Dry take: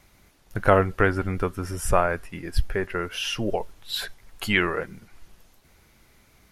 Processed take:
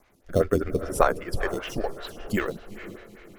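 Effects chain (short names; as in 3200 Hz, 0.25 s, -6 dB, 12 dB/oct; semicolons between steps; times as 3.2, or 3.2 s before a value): granular stretch 0.52×, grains 41 ms; in parallel at -8 dB: sample-and-hold 9×; on the sum: rotary speaker horn 0.6 Hz; diffused feedback echo 0.456 s, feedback 44%, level -13 dB; photocell phaser 5.1 Hz; gain +2.5 dB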